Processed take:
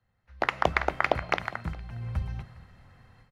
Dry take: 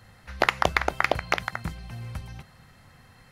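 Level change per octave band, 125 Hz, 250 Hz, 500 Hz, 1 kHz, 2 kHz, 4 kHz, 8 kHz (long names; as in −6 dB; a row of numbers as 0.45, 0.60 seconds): +1.0, −1.5, −1.0, −2.0, −3.5, −6.5, −11.0 decibels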